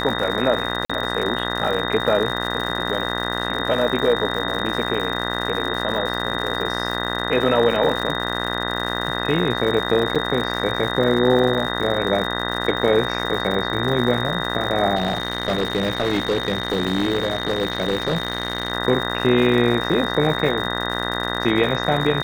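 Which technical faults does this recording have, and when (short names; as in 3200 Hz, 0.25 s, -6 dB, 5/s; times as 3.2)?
buzz 60 Hz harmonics 33 -26 dBFS
crackle 150/s -27 dBFS
tone 3700 Hz -28 dBFS
0.85–0.9 gap 45 ms
10.15–10.16 gap 5.8 ms
14.95–18.72 clipped -15.5 dBFS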